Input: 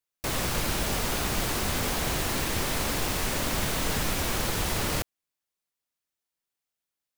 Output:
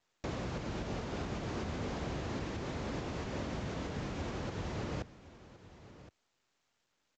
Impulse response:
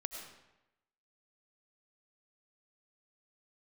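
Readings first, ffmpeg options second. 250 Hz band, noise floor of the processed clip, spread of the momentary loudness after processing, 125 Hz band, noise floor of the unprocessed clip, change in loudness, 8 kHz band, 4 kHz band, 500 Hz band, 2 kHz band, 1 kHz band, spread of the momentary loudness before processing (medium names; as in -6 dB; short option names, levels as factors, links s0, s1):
-5.5 dB, -80 dBFS, 17 LU, -6.5 dB, under -85 dBFS, -12.0 dB, -23.5 dB, -17.5 dB, -7.0 dB, -14.0 dB, -11.0 dB, 1 LU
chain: -filter_complex "[0:a]lowpass=f=1900:p=1,acrossover=split=610[s0][s1];[s1]asoftclip=type=tanh:threshold=0.0106[s2];[s0][s2]amix=inputs=2:normalize=0,alimiter=level_in=1.68:limit=0.0631:level=0:latency=1:release=367,volume=0.596,highpass=62,asplit=2[s3][s4];[s4]aecho=0:1:1067:0.15[s5];[s3][s5]amix=inputs=2:normalize=0,volume=1.12" -ar 16000 -c:a pcm_mulaw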